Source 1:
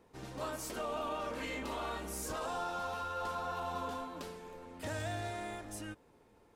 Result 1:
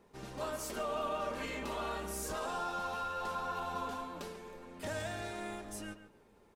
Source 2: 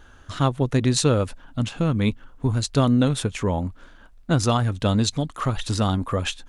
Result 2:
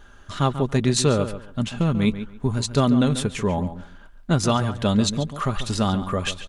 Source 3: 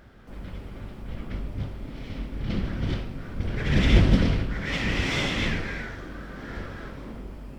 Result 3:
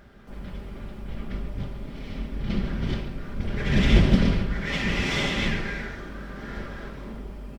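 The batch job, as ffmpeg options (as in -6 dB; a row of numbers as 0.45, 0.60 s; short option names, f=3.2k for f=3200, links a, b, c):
-filter_complex "[0:a]aecho=1:1:5:0.34,asplit=2[a][b];[b]adelay=140,lowpass=f=3.5k:p=1,volume=-11.5dB,asplit=2[c][d];[d]adelay=140,lowpass=f=3.5k:p=1,volume=0.21,asplit=2[e][f];[f]adelay=140,lowpass=f=3.5k:p=1,volume=0.21[g];[a][c][e][g]amix=inputs=4:normalize=0"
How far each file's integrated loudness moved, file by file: +0.5, 0.0, +0.5 LU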